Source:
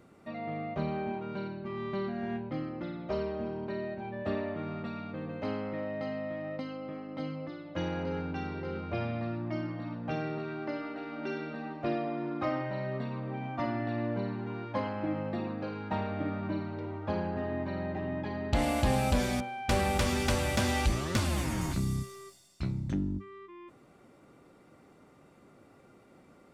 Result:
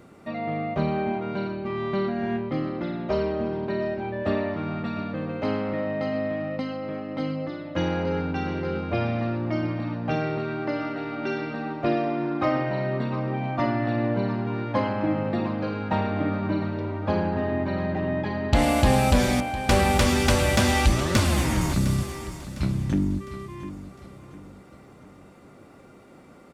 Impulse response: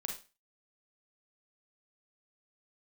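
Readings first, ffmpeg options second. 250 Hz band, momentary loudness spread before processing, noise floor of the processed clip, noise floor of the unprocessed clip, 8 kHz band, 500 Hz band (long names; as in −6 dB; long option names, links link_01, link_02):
+8.0 dB, 10 LU, −49 dBFS, −59 dBFS, +8.0 dB, +8.0 dB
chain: -af "aecho=1:1:706|1412|2118|2824:0.2|0.0838|0.0352|0.0148,volume=8dB"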